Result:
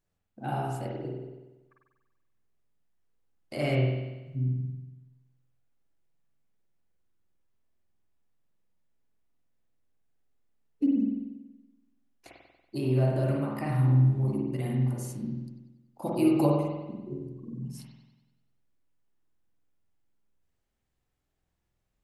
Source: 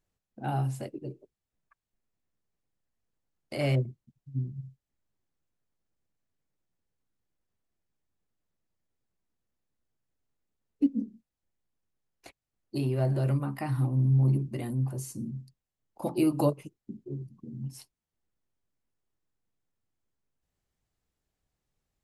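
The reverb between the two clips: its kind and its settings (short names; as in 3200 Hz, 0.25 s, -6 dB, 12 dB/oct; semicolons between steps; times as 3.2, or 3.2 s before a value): spring tank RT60 1.1 s, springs 47 ms, chirp 50 ms, DRR -2.5 dB; gain -2 dB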